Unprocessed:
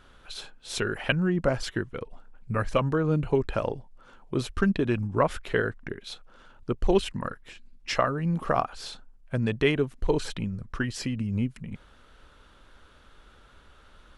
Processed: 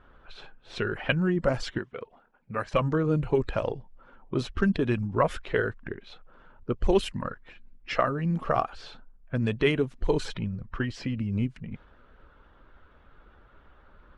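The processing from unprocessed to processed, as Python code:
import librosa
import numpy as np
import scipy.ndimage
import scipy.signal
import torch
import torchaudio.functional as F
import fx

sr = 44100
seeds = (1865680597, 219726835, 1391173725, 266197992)

y = fx.spec_quant(x, sr, step_db=15)
y = fx.env_lowpass(y, sr, base_hz=1700.0, full_db=-19.5)
y = fx.highpass(y, sr, hz=360.0, slope=6, at=(1.78, 2.74))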